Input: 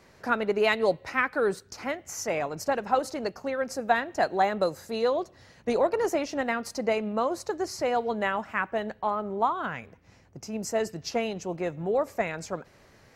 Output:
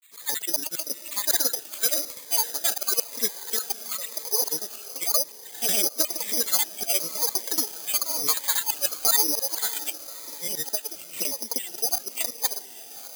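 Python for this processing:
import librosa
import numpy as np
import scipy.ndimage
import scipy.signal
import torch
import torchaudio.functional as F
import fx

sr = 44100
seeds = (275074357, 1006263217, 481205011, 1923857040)

y = scipy.signal.sosfilt(scipy.signal.bessel(2, 150.0, 'highpass', norm='mag', fs=sr, output='sos'), x)
y = fx.peak_eq(y, sr, hz=3300.0, db=8.0, octaves=1.0)
y = y + 0.78 * np.pad(y, (int(3.1 * sr / 1000.0), 0))[:len(y)]
y = fx.over_compress(y, sr, threshold_db=-25.0, ratio=-0.5)
y = fx.filter_lfo_highpass(y, sr, shape='square', hz=5.0, low_hz=470.0, high_hz=3200.0, q=0.78)
y = 10.0 ** (-21.0 / 20.0) * np.tanh(y / 10.0 ** (-21.0 / 20.0))
y = fx.granulator(y, sr, seeds[0], grain_ms=100.0, per_s=20.0, spray_ms=100.0, spread_st=7)
y = fx.echo_diffused(y, sr, ms=592, feedback_pct=54, wet_db=-14)
y = (np.kron(scipy.signal.resample_poly(y, 1, 8), np.eye(8)[0]) * 8)[:len(y)]
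y = fx.notch_cascade(y, sr, direction='falling', hz=0.98)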